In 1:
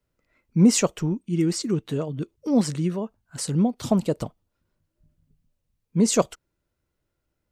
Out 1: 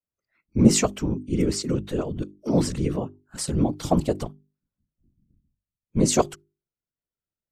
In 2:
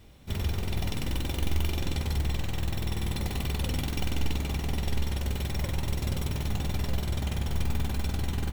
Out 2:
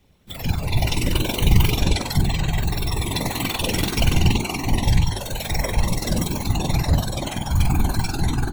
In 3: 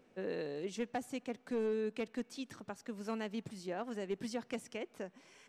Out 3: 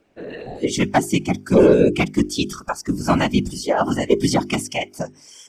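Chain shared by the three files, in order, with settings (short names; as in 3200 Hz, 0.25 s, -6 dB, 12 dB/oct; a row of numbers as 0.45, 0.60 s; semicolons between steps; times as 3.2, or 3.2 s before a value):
spectral noise reduction 19 dB; whisperiser; notches 50/100/150/200/250/300/350/400 Hz; normalise peaks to -1.5 dBFS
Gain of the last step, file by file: +0.5, +14.0, +24.0 dB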